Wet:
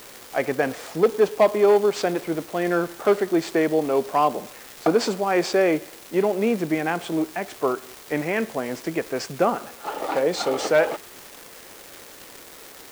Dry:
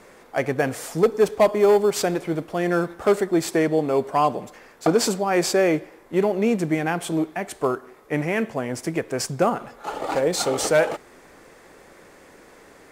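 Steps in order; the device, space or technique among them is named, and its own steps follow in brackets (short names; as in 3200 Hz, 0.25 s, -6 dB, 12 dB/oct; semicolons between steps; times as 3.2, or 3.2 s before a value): 78 rpm shellac record (BPF 200–4700 Hz; crackle 380/s -30 dBFS; white noise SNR 24 dB)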